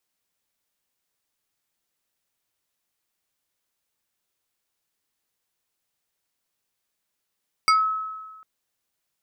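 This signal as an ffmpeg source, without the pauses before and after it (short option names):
-f lavfi -i "aevalsrc='0.224*pow(10,-3*t/1.38)*sin(2*PI*1290*t+1.4*pow(10,-3*t/0.21)*sin(2*PI*2.71*1290*t))':d=0.75:s=44100"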